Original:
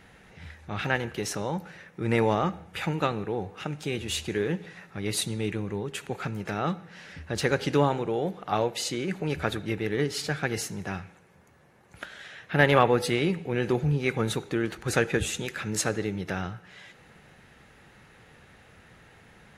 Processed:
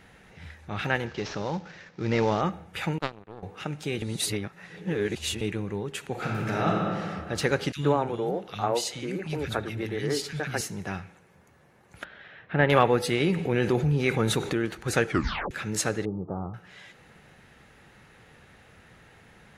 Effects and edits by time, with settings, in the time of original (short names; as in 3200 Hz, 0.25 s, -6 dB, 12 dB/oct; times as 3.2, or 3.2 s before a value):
1.06–2.41 CVSD 32 kbps
2.98–3.43 power-law curve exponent 2
4.02–5.41 reverse
6.11–6.99 reverb throw, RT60 2.2 s, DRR -2.5 dB
7.72–10.61 three bands offset in time highs, lows, mids 40/110 ms, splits 220/2100 Hz
12.04–12.7 air absorption 370 m
13.2–14.53 fast leveller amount 50%
15.07 tape stop 0.44 s
16.05–16.54 Chebyshev low-pass 1200 Hz, order 6